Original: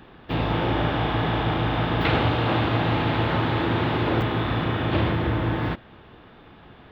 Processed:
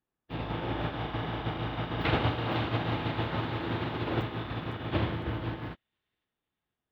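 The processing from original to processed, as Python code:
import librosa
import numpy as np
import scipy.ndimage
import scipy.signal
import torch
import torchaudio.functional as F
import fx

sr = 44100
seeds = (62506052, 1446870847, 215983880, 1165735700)

y = fx.echo_wet_highpass(x, sr, ms=506, feedback_pct=49, hz=3200.0, wet_db=-4)
y = fx.upward_expand(y, sr, threshold_db=-44.0, expansion=2.5)
y = y * librosa.db_to_amplitude(-3.5)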